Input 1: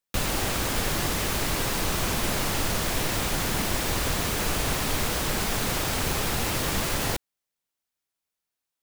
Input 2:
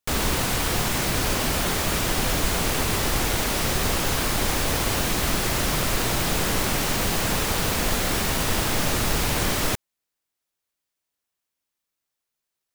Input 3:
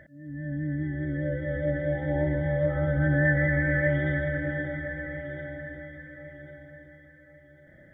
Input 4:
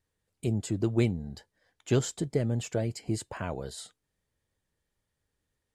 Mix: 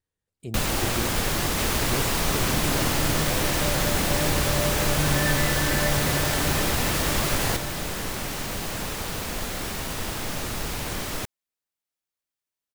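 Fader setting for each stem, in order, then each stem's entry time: +1.5 dB, -7.0 dB, -3.0 dB, -6.5 dB; 0.40 s, 1.50 s, 2.00 s, 0.00 s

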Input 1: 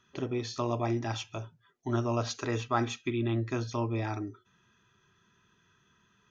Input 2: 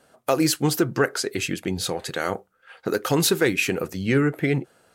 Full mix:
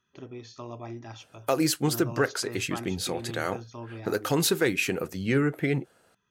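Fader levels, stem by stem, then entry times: -9.0 dB, -4.0 dB; 0.00 s, 1.20 s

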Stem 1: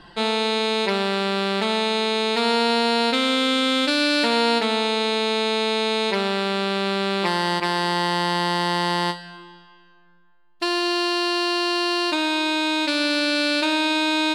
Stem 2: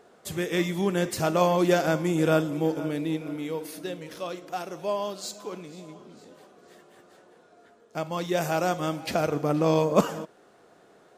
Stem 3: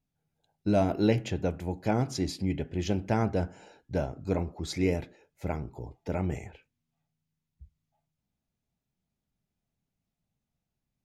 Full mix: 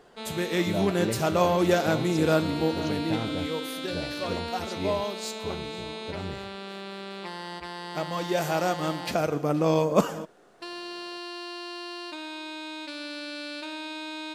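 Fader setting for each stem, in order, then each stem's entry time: -15.5 dB, -0.5 dB, -6.0 dB; 0.00 s, 0.00 s, 0.00 s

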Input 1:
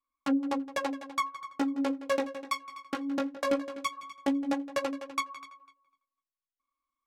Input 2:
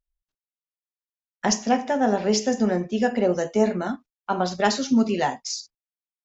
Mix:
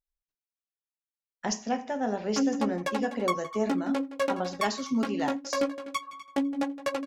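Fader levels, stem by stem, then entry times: +0.5 dB, -8.5 dB; 2.10 s, 0.00 s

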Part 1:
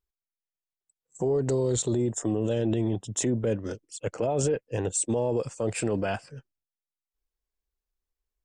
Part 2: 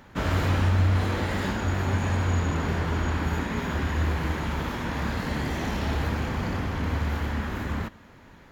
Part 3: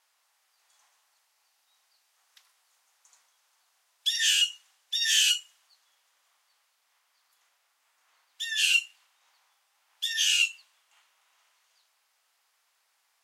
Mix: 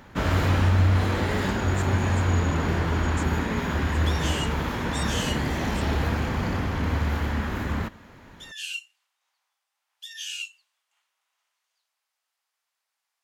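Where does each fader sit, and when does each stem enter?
-12.5 dB, +2.0 dB, -10.5 dB; 0.00 s, 0.00 s, 0.00 s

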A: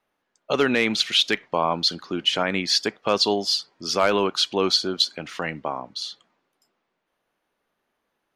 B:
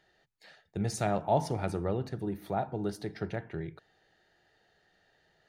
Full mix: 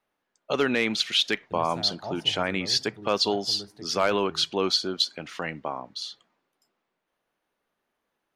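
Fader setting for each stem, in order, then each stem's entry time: -3.5 dB, -9.5 dB; 0.00 s, 0.75 s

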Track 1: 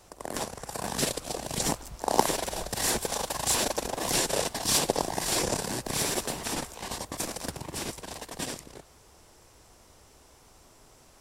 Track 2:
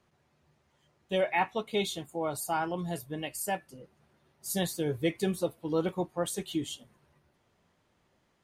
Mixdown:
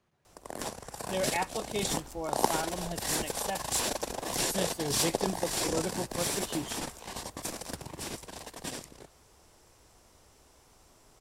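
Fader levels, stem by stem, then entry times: -4.0 dB, -4.0 dB; 0.25 s, 0.00 s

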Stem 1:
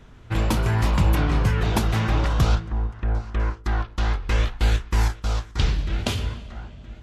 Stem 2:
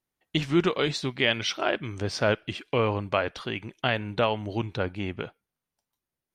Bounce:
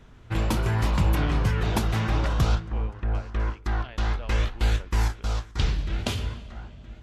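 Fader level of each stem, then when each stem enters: -3.0 dB, -19.5 dB; 0.00 s, 0.00 s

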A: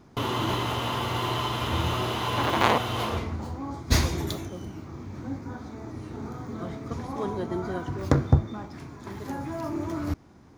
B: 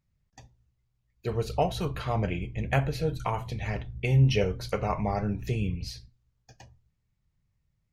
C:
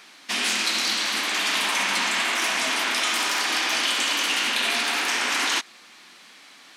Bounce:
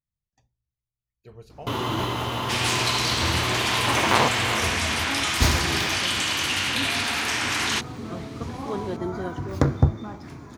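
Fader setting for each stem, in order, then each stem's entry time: +1.0 dB, -16.0 dB, -1.5 dB; 1.50 s, 0.00 s, 2.20 s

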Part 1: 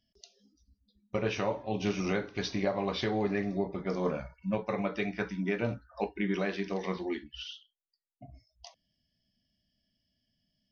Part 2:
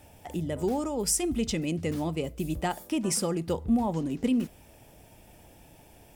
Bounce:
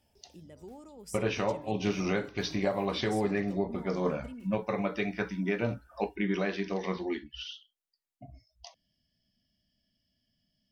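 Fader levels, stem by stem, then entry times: +1.0 dB, -19.5 dB; 0.00 s, 0.00 s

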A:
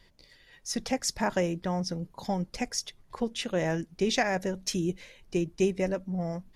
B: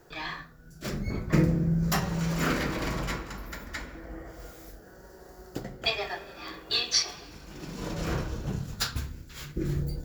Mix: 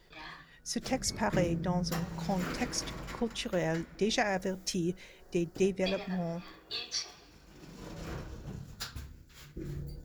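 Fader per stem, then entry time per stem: -3.0 dB, -10.5 dB; 0.00 s, 0.00 s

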